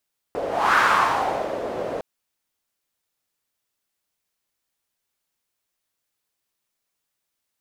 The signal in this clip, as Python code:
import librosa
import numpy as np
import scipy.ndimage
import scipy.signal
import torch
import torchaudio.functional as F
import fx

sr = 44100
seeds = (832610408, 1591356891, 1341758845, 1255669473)

y = fx.whoosh(sr, seeds[0], length_s=1.66, peak_s=0.42, rise_s=0.33, fall_s=0.89, ends_hz=540.0, peak_hz=1300.0, q=3.6, swell_db=10.5)